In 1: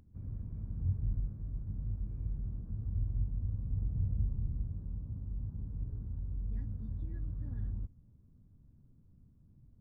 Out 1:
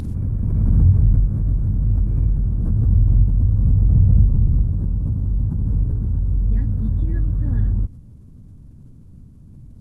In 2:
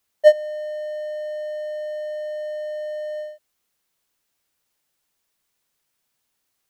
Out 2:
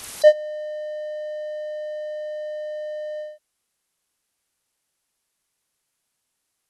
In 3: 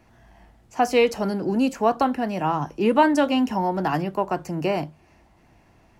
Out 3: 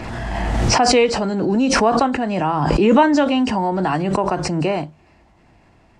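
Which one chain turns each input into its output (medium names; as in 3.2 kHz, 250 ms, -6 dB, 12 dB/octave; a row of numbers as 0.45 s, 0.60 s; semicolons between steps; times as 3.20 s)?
knee-point frequency compression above 3.6 kHz 1.5:1; swell ahead of each attack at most 22 dB/s; peak normalisation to -3 dBFS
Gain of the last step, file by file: +18.0 dB, -1.5 dB, +3.0 dB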